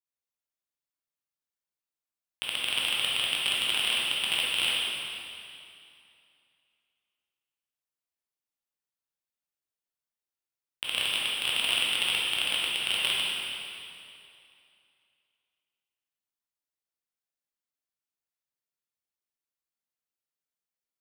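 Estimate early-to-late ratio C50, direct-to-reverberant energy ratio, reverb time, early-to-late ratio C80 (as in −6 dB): −3.0 dB, −6.0 dB, 2.6 s, −0.5 dB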